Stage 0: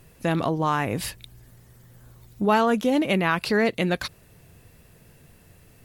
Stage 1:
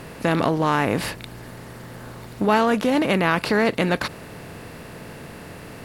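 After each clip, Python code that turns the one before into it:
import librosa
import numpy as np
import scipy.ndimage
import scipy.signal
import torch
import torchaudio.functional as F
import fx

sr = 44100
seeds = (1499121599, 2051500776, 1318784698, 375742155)

y = fx.bin_compress(x, sr, power=0.6)
y = fx.high_shelf(y, sr, hz=6700.0, db=-5.0)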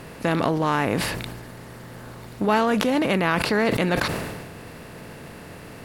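y = fx.sustainer(x, sr, db_per_s=35.0)
y = y * 10.0 ** (-2.0 / 20.0)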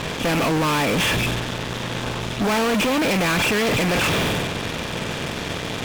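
y = fx.freq_compress(x, sr, knee_hz=2300.0, ratio=4.0)
y = fx.fuzz(y, sr, gain_db=39.0, gate_db=-41.0)
y = y * 10.0 ** (-5.5 / 20.0)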